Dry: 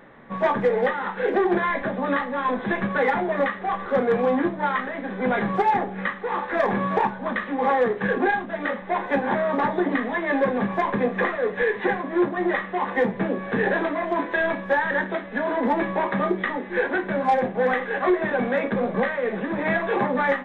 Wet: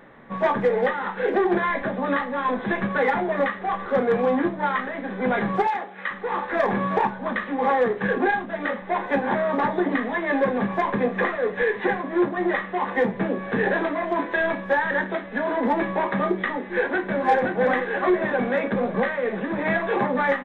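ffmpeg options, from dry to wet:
ffmpeg -i in.wav -filter_complex "[0:a]asettb=1/sr,asplit=3[link_01][link_02][link_03];[link_01]atrim=end=5.674[link_04];[link_02]atrim=start=5.67:end=6.11,asetpts=PTS-STARTPTS,afade=type=in:duration=0.004:curve=qsin,afade=type=out:start_time=0.436:duration=0.004:curve=qsin,highpass=frequency=1200:poles=1[link_05];[link_03]atrim=start=6.106[link_06];[link_04][link_05]acrossfade=duration=0.004:curve1=hsin:curve2=qsin[link_07];[link_07][link_06]acrossfade=duration=0.004:curve1=qsin:curve2=hsin,asplit=2[link_08][link_09];[link_09]afade=type=in:start_time=16.58:duration=0.01,afade=type=out:start_time=17.27:duration=0.01,aecho=0:1:520|1040|1560|2080|2600|3120:0.630957|0.315479|0.157739|0.0788697|0.0394348|0.0197174[link_10];[link_08][link_10]amix=inputs=2:normalize=0" out.wav

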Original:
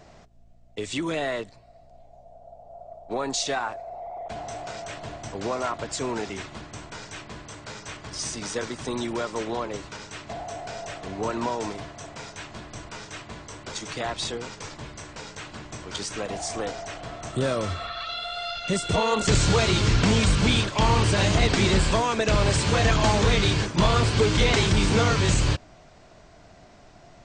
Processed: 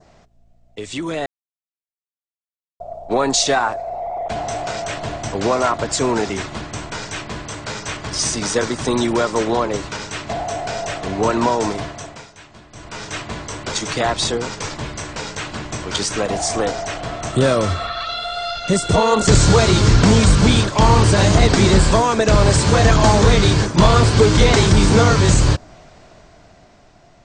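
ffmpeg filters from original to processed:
ffmpeg -i in.wav -filter_complex "[0:a]asplit=5[link_01][link_02][link_03][link_04][link_05];[link_01]atrim=end=1.26,asetpts=PTS-STARTPTS,afade=type=out:start_time=1.256:duration=0.004:curve=hsin[link_06];[link_02]atrim=start=1.26:end=2.8,asetpts=PTS-STARTPTS,volume=0[link_07];[link_03]atrim=start=2.8:end=12.28,asetpts=PTS-STARTPTS,afade=type=in:duration=0.004:curve=hsin,afade=type=out:start_time=9.05:duration=0.43:silence=0.188365[link_08];[link_04]atrim=start=12.28:end=12.71,asetpts=PTS-STARTPTS,volume=-14.5dB[link_09];[link_05]atrim=start=12.71,asetpts=PTS-STARTPTS,afade=type=in:duration=0.43:silence=0.188365[link_10];[link_06][link_07][link_08][link_09][link_10]concat=n=5:v=0:a=1,adynamicequalizer=threshold=0.00708:dfrequency=2700:dqfactor=1.3:tfrequency=2700:tqfactor=1.3:attack=5:release=100:ratio=0.375:range=3.5:mode=cutabove:tftype=bell,dynaudnorm=framelen=280:gausssize=11:maxgain=11.5dB" out.wav

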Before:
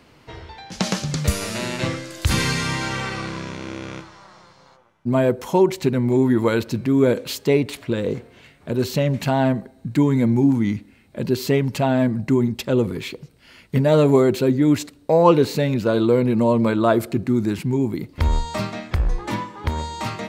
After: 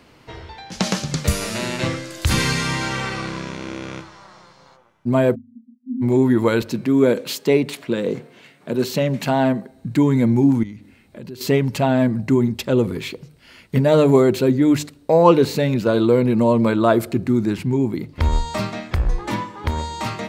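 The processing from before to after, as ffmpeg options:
ffmpeg -i in.wav -filter_complex "[0:a]asplit=3[link_01][link_02][link_03];[link_01]afade=type=out:start_time=5.34:duration=0.02[link_04];[link_02]asuperpass=centerf=240:order=12:qfactor=5.9,afade=type=in:start_time=5.34:duration=0.02,afade=type=out:start_time=6.01:duration=0.02[link_05];[link_03]afade=type=in:start_time=6.01:duration=0.02[link_06];[link_04][link_05][link_06]amix=inputs=3:normalize=0,asettb=1/sr,asplit=3[link_07][link_08][link_09];[link_07]atrim=end=6.624[link_10];[link_08]atrim=start=6.62:end=9.71,asetpts=PTS-STARTPTS,afade=type=in:duration=0.004:curve=qsin,afade=type=out:start_time=3.086:duration=0.004:curve=qsin,highpass=frequency=140:width=0.5412,highpass=frequency=140:width=1.3066[link_11];[link_09]atrim=start=9.706[link_12];[link_10][link_11]acrossfade=duration=0.004:curve1=hsin:curve2=qsin[link_13];[link_13][link_12]acrossfade=duration=0.004:curve1=qsin:curve2=hsin,asettb=1/sr,asplit=3[link_14][link_15][link_16];[link_14]atrim=end=10.634[link_17];[link_15]atrim=start=10.63:end=11.41,asetpts=PTS-STARTPTS,afade=type=in:duration=0.004:curve=qsin,afade=type=out:start_time=0.776:duration=0.004:curve=qsin,acompressor=threshold=-37dB:ratio=3:attack=3.2:release=140:knee=1:detection=peak[link_18];[link_16]atrim=start=11.406[link_19];[link_17][link_18]acrossfade=duration=0.004:curve1=hsin:curve2=qsin[link_20];[link_20][link_19]acrossfade=duration=0.004:curve1=qsin:curve2=hsin,asettb=1/sr,asplit=3[link_21][link_22][link_23];[link_21]atrim=end=17.374[link_24];[link_22]atrim=start=17.37:end=18.24,asetpts=PTS-STARTPTS,afade=type=in:duration=0.004:curve=qsin,afade=type=out:start_time=0.866:duration=0.004:curve=qsin,highshelf=frequency=7900:gain=-6.5[link_25];[link_23]atrim=start=18.236[link_26];[link_24][link_25]acrossfade=duration=0.004:curve1=hsin:curve2=qsin[link_27];[link_27][link_26]acrossfade=duration=0.004:curve1=qsin:curve2=hsin,bandreject=frequency=50:width_type=h:width=6,bandreject=frequency=100:width_type=h:width=6,bandreject=frequency=150:width_type=h:width=6,volume=1.5dB" out.wav

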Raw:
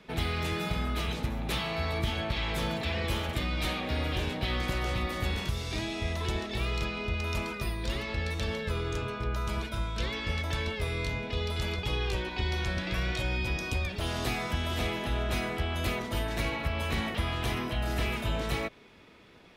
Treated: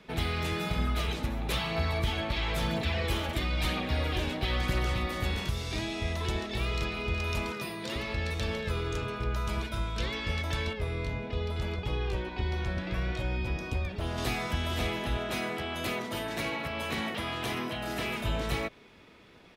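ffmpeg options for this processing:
ffmpeg -i in.wav -filter_complex "[0:a]asettb=1/sr,asplit=3[link_01][link_02][link_03];[link_01]atrim=end=0.784[link_04];[link_02]atrim=start=0.78:end=4.94,asetpts=PTS-STARTPTS,afade=type=in:duration=0.004:curve=qsin,afade=type=out:start_time=4.156:duration=0.004:curve=qsin,aphaser=in_gain=1:out_gain=1:delay=3.7:decay=0.33:speed=1:type=triangular[link_05];[link_03]atrim=start=4.936[link_06];[link_04][link_05]acrossfade=duration=0.004:curve1=hsin:curve2=qsin[link_07];[link_07][link_06]acrossfade=duration=0.004:curve1=qsin:curve2=hsin,asplit=2[link_08][link_09];[link_09]afade=type=in:start_time=6.32:duration=0.01,afade=type=out:start_time=7.02:duration=0.01,aecho=0:1:370|740|1110|1480|1850|2220|2590|2960|3330|3700|4070|4440:0.266073|0.226162|0.192237|0.163402|0.138892|0.118058|0.100349|0.0852967|0.0725022|0.0616269|0.0523829|0.0445254[link_10];[link_08][link_10]amix=inputs=2:normalize=0,asettb=1/sr,asplit=3[link_11][link_12][link_13];[link_11]atrim=end=7.524[link_14];[link_12]atrim=start=7.52:end=7.96,asetpts=PTS-STARTPTS,afade=type=in:duration=0.004:curve=qsin,afade=type=out:start_time=0.436:duration=0.004:curve=qsin,highpass=frequency=140:width=0.5412,highpass=frequency=140:width=1.3066[link_15];[link_13]atrim=start=7.956[link_16];[link_14][link_15]acrossfade=duration=0.004:curve1=hsin:curve2=qsin[link_17];[link_17][link_16]acrossfade=duration=0.004:curve1=qsin:curve2=hsin,asettb=1/sr,asplit=3[link_18][link_19][link_20];[link_18]atrim=end=10.734[link_21];[link_19]atrim=start=10.73:end=14.18,asetpts=PTS-STARTPTS,afade=type=in:duration=0.004:curve=qsin,afade=type=out:start_time=3.446:duration=0.004:curve=qsin,highshelf=frequency=2200:gain=-10[link_22];[link_20]atrim=start=14.176[link_23];[link_21][link_22]acrossfade=duration=0.004:curve1=hsin:curve2=qsin[link_24];[link_24][link_23]acrossfade=duration=0.004:curve1=qsin:curve2=hsin,asettb=1/sr,asplit=3[link_25][link_26][link_27];[link_25]atrim=end=15.174[link_28];[link_26]atrim=start=15.17:end=18.21,asetpts=PTS-STARTPTS,afade=type=in:duration=0.004:curve=qsin,afade=type=out:start_time=3.036:duration=0.004:curve=qsin,highpass=150[link_29];[link_27]atrim=start=18.206[link_30];[link_28][link_29]acrossfade=duration=0.004:curve1=hsin:curve2=qsin[link_31];[link_31][link_30]acrossfade=duration=0.004:curve1=qsin:curve2=hsin" out.wav

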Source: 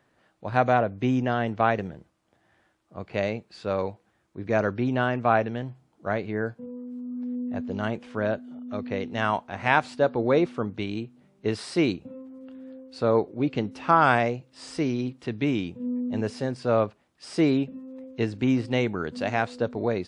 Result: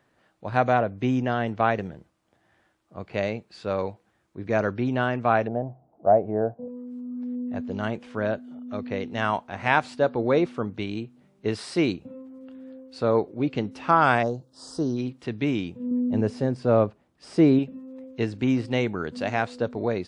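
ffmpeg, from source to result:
ffmpeg -i in.wav -filter_complex "[0:a]asettb=1/sr,asplit=3[link_01][link_02][link_03];[link_01]atrim=end=5.474[link_04];[link_02]atrim=start=5.47:end=6.68,asetpts=PTS-STARTPTS,afade=type=in:duration=0.004:curve=qsin,afade=type=out:start_time=1.206:duration=0.004:curve=qsin,lowpass=frequency=690:width_type=q:width=5[link_05];[link_03]atrim=start=6.676[link_06];[link_04][link_05]acrossfade=duration=0.004:curve1=hsin:curve2=qsin[link_07];[link_07][link_06]acrossfade=duration=0.004:curve1=qsin:curve2=hsin,asplit=3[link_08][link_09][link_10];[link_08]afade=type=out:start_time=14.22:duration=0.02[link_11];[link_09]asuperstop=centerf=2300:order=4:qfactor=0.85,afade=type=in:start_time=14.22:duration=0.02,afade=type=out:start_time=14.96:duration=0.02[link_12];[link_10]afade=type=in:start_time=14.96:duration=0.02[link_13];[link_11][link_12][link_13]amix=inputs=3:normalize=0,asettb=1/sr,asplit=3[link_14][link_15][link_16];[link_14]atrim=end=15.914[link_17];[link_15]atrim=start=15.91:end=17.59,asetpts=PTS-STARTPTS,afade=type=in:duration=0.004:curve=qsin,afade=type=out:start_time=1.676:duration=0.004:curve=qsin,tiltshelf=frequency=970:gain=5[link_18];[link_16]atrim=start=17.586[link_19];[link_17][link_18]acrossfade=duration=0.004:curve1=hsin:curve2=qsin[link_20];[link_20][link_19]acrossfade=duration=0.004:curve1=qsin:curve2=hsin" out.wav

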